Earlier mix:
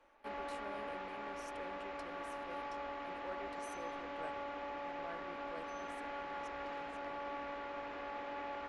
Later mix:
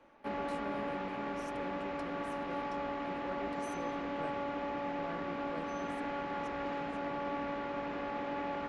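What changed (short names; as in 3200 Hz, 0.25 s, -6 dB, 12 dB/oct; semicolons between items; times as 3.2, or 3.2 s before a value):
background +3.5 dB; master: add bell 170 Hz +13.5 dB 1.8 oct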